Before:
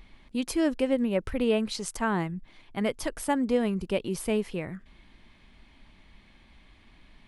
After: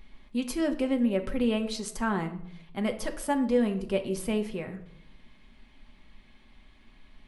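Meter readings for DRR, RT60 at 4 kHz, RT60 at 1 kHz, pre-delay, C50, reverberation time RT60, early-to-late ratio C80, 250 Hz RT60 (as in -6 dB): 5.0 dB, 0.50 s, 0.65 s, 4 ms, 12.5 dB, 0.75 s, 15.5 dB, 0.80 s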